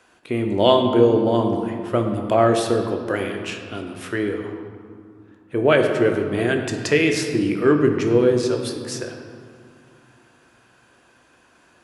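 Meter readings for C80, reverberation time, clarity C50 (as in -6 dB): 6.5 dB, 2.3 s, 5.5 dB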